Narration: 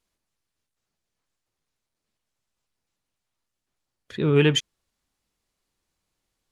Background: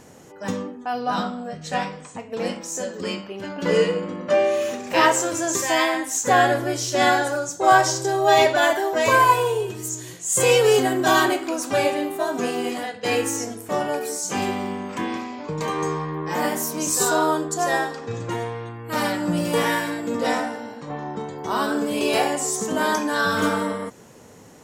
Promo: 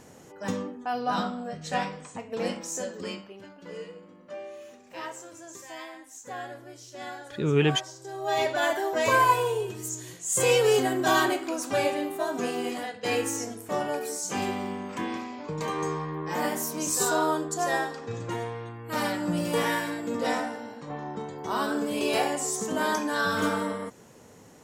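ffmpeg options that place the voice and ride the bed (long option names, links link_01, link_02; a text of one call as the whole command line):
ffmpeg -i stem1.wav -i stem2.wav -filter_complex "[0:a]adelay=3200,volume=-4dB[link_01];[1:a]volume=12.5dB,afade=type=out:start_time=2.69:duration=0.92:silence=0.133352,afade=type=in:start_time=7.98:duration=0.9:silence=0.158489[link_02];[link_01][link_02]amix=inputs=2:normalize=0" out.wav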